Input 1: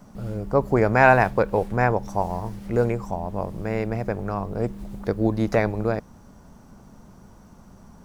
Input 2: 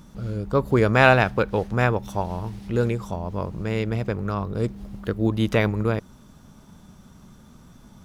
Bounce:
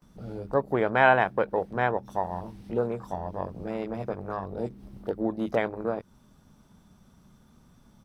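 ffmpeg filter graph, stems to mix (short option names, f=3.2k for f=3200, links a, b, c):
-filter_complex "[0:a]highpass=f=300:p=1,afwtdn=0.0282,volume=-3.5dB,asplit=2[a][b];[1:a]acompressor=threshold=-22dB:ratio=6,adelay=21,volume=-9dB[c];[b]apad=whole_len=355845[d];[c][d]sidechaincompress=threshold=-26dB:ratio=8:attack=12:release=597[e];[a][e]amix=inputs=2:normalize=0,bandreject=f=6.9k:w=9.2"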